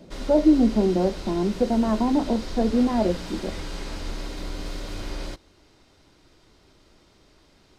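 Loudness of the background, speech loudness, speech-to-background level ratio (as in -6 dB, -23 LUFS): -36.0 LUFS, -22.5 LUFS, 13.5 dB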